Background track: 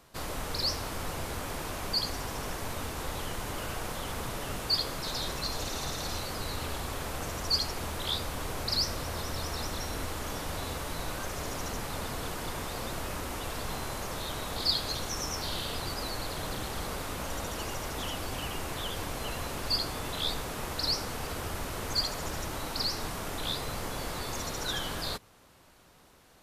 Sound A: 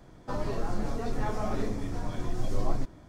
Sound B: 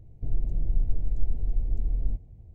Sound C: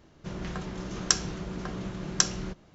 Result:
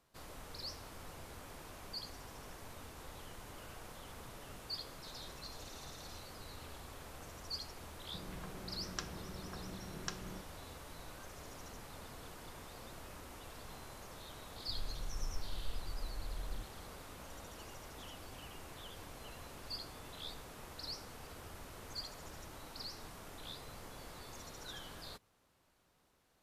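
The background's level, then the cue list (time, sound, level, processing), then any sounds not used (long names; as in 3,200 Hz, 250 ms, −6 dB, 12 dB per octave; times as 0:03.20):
background track −15 dB
0:07.88: mix in C −13.5 dB + low-pass filter 4,000 Hz
0:14.46: mix in B −16.5 dB
not used: A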